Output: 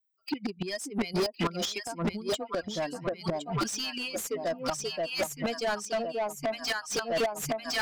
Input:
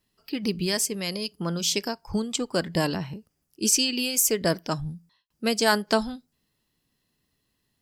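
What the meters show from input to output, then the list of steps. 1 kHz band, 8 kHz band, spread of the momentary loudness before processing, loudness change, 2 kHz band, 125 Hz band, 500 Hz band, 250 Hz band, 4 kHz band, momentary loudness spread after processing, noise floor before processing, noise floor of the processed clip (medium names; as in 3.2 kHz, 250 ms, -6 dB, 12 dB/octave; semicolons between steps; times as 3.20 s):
-1.5 dB, -10.5 dB, 14 LU, -6.5 dB, -3.0 dB, -5.5 dB, -1.5 dB, -5.5 dB, -5.5 dB, 4 LU, -76 dBFS, -54 dBFS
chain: expander on every frequency bin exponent 2; peaking EQ 670 Hz +7 dB 0.45 oct; echo whose repeats swap between lows and highs 530 ms, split 990 Hz, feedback 66%, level -3 dB; inverted gate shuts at -24 dBFS, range -29 dB; overdrive pedal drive 35 dB, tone 3.4 kHz, clips at -21.5 dBFS; trim +2 dB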